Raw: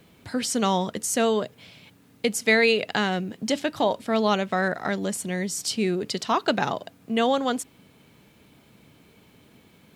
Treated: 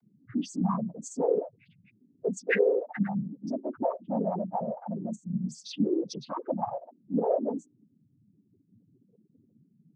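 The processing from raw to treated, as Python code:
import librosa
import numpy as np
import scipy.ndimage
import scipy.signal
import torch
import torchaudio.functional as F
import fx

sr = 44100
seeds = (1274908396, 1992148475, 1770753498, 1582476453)

y = fx.spec_topn(x, sr, count=2)
y = fx.noise_vocoder(y, sr, seeds[0], bands=16)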